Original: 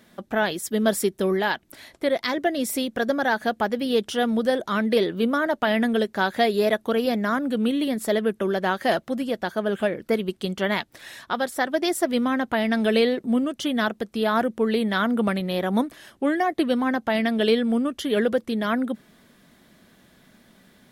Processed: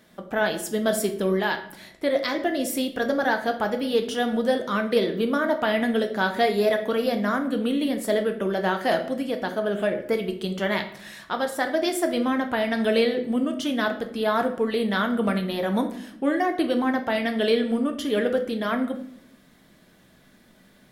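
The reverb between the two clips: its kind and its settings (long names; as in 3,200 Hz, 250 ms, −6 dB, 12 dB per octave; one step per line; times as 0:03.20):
rectangular room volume 130 cubic metres, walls mixed, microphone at 0.47 metres
level −2 dB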